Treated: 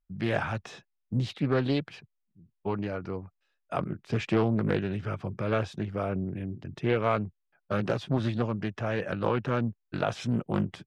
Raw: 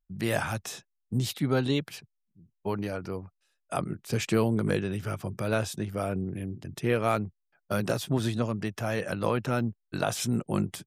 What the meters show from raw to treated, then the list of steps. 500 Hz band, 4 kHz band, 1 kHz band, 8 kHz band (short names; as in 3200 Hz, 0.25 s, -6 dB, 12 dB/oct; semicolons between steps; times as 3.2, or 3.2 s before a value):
0.0 dB, -4.0 dB, 0.0 dB, under -15 dB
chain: LPF 3200 Hz 12 dB/oct; Doppler distortion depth 0.31 ms